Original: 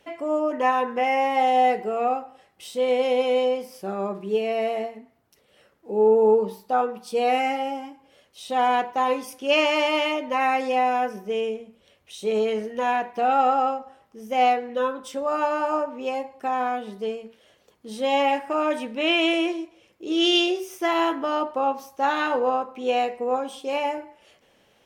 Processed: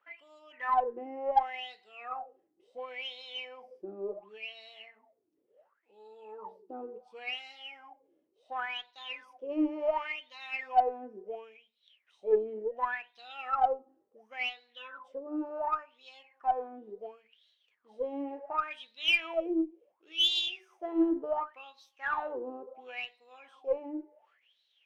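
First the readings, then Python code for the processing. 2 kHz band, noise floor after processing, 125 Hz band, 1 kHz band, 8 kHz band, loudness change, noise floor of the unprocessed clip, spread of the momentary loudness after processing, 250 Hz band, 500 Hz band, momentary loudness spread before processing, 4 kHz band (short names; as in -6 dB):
-8.5 dB, -76 dBFS, n/a, -11.5 dB, under -15 dB, -10.0 dB, -62 dBFS, 18 LU, -9.0 dB, -13.5 dB, 11 LU, -6.0 dB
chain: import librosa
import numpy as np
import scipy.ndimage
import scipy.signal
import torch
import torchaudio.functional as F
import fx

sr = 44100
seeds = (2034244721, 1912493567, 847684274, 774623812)

y = fx.wah_lfo(x, sr, hz=0.7, low_hz=310.0, high_hz=4000.0, q=13.0)
y = fx.cheby_harmonics(y, sr, harmonics=(6, 7), levels_db=(-33, -43), full_scale_db=-17.5)
y = F.gain(torch.from_numpy(y), 5.0).numpy()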